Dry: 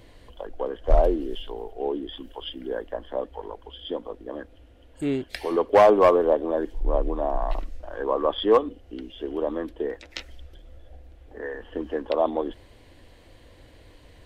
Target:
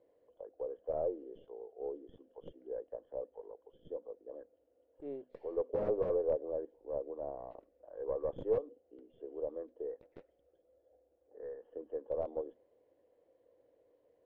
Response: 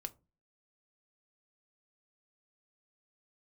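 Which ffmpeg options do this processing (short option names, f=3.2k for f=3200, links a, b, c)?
-af "highpass=60,aderivative,bandreject=f=50:t=h:w=6,bandreject=f=100:t=h:w=6,bandreject=f=150:t=h:w=6,bandreject=f=200:t=h:w=6,bandreject=f=250:t=h:w=6,aeval=exprs='0.126*(cos(1*acos(clip(val(0)/0.126,-1,1)))-cos(1*PI/2))+0.0224*(cos(6*acos(clip(val(0)/0.126,-1,1)))-cos(6*PI/2))':c=same,aeval=exprs='(mod(23.7*val(0)+1,2)-1)/23.7':c=same,lowpass=f=500:t=q:w=4,volume=2.5dB"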